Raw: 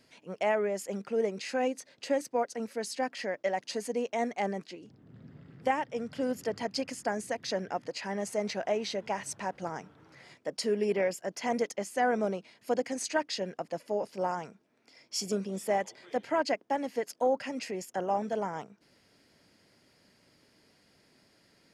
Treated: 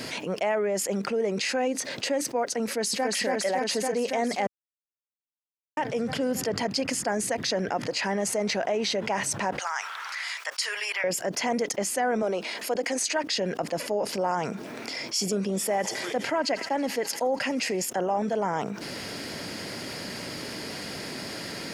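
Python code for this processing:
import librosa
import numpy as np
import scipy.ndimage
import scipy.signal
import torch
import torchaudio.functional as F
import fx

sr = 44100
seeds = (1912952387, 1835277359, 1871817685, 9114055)

y = fx.echo_throw(x, sr, start_s=2.65, length_s=0.5, ms=280, feedback_pct=75, wet_db=-2.0)
y = fx.highpass(y, sr, hz=1100.0, slope=24, at=(9.59, 11.04))
y = fx.highpass(y, sr, hz=320.0, slope=12, at=(12.22, 13.24))
y = fx.echo_wet_highpass(y, sr, ms=82, feedback_pct=83, hz=2300.0, wet_db=-20.5, at=(15.6, 17.85), fade=0.02)
y = fx.edit(y, sr, fx.silence(start_s=4.47, length_s=1.3), tone=tone)
y = fx.low_shelf(y, sr, hz=63.0, db=-11.0)
y = fx.env_flatten(y, sr, amount_pct=70)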